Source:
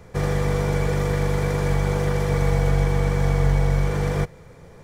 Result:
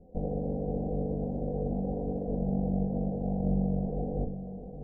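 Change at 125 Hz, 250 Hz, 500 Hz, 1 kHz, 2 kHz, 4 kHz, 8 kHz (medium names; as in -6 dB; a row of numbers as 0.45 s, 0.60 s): -12.5 dB, -3.0 dB, -9.0 dB, -12.0 dB, under -40 dB, under -40 dB, under -40 dB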